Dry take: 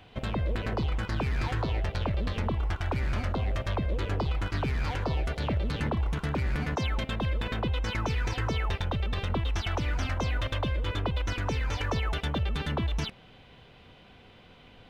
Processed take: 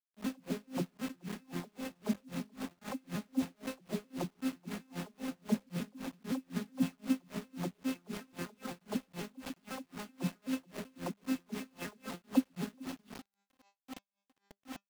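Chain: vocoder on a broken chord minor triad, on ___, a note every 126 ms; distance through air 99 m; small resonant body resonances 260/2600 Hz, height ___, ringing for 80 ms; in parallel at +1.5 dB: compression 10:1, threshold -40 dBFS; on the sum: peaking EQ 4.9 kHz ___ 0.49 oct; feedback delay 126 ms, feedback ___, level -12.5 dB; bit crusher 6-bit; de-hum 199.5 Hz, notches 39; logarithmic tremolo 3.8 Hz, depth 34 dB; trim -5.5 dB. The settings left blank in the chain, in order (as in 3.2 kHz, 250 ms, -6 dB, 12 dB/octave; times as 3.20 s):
F3, 13 dB, +7 dB, 39%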